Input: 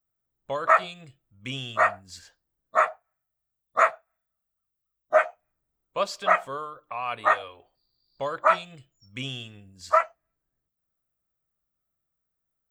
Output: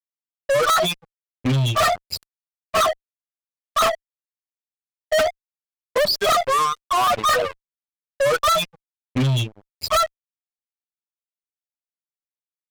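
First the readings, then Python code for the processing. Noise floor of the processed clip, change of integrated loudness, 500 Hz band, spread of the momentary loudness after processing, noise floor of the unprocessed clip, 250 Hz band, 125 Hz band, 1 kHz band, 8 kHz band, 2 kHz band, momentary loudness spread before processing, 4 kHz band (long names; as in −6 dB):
below −85 dBFS, +5.0 dB, +6.5 dB, 12 LU, −83 dBFS, +14.0 dB, +18.5 dB, +4.0 dB, +17.5 dB, +2.0 dB, 17 LU, +14.0 dB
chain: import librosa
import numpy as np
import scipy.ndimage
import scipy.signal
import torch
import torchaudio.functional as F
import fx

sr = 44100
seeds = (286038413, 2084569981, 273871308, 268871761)

y = fx.spec_expand(x, sr, power=3.9)
y = fx.fuzz(y, sr, gain_db=39.0, gate_db=-44.0)
y = y * 10.0 ** (-2.5 / 20.0)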